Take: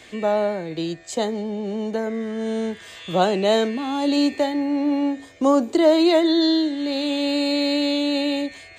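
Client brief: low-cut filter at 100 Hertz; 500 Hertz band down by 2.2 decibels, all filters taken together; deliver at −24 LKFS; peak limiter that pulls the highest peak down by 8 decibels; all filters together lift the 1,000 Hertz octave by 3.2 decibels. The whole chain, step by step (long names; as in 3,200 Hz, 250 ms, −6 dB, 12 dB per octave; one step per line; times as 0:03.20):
high-pass filter 100 Hz
parametric band 500 Hz −5.5 dB
parametric band 1,000 Hz +6.5 dB
level +0.5 dB
brickwall limiter −14.5 dBFS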